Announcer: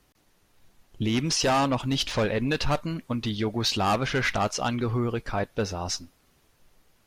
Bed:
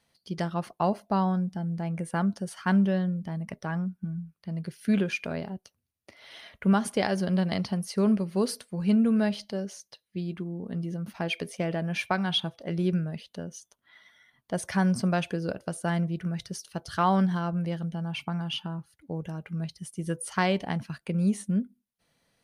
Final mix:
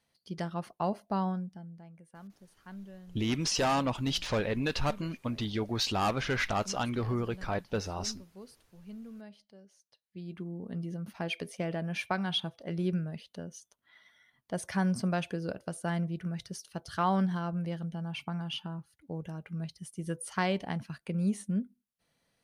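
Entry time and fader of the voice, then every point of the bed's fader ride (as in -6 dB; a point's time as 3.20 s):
2.15 s, -5.0 dB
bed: 1.28 s -5.5 dB
1.98 s -23 dB
9.68 s -23 dB
10.45 s -4.5 dB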